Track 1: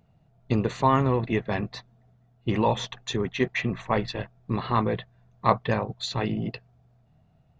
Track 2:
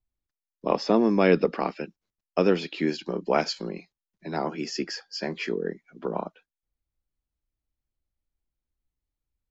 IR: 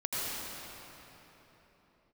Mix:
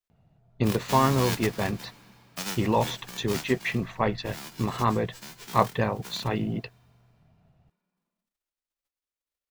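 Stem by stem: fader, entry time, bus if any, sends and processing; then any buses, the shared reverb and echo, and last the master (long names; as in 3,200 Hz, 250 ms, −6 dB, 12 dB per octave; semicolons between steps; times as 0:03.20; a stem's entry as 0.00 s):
−0.5 dB, 0.10 s, no send, no processing
−12.0 dB, 0.00 s, send −19.5 dB, spectral envelope flattened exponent 0.1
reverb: on, pre-delay 76 ms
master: high-shelf EQ 5,800 Hz −4 dB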